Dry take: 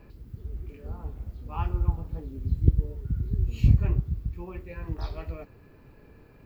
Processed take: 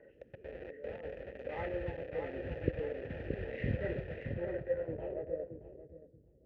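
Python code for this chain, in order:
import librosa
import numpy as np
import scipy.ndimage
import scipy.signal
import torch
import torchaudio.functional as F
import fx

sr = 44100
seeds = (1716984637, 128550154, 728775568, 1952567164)

p1 = fx.freq_compress(x, sr, knee_hz=1200.0, ratio=1.5)
p2 = fx.quant_dither(p1, sr, seeds[0], bits=6, dither='none')
p3 = p1 + (p2 * 10.0 ** (-4.0 / 20.0))
p4 = fx.transient(p3, sr, attack_db=1, sustain_db=5, at=(1.28, 1.69))
p5 = fx.vowel_filter(p4, sr, vowel='e')
p6 = p5 + fx.echo_feedback(p5, sr, ms=625, feedback_pct=34, wet_db=-6, dry=0)
p7 = fx.filter_sweep_lowpass(p6, sr, from_hz=2300.0, to_hz=190.0, start_s=4.15, end_s=6.23, q=0.8)
y = p7 * 10.0 ** (9.5 / 20.0)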